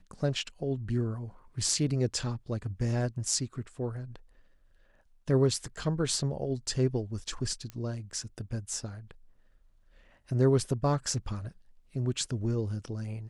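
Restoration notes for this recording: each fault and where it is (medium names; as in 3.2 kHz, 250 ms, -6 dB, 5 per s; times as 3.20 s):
7.70 s: pop -25 dBFS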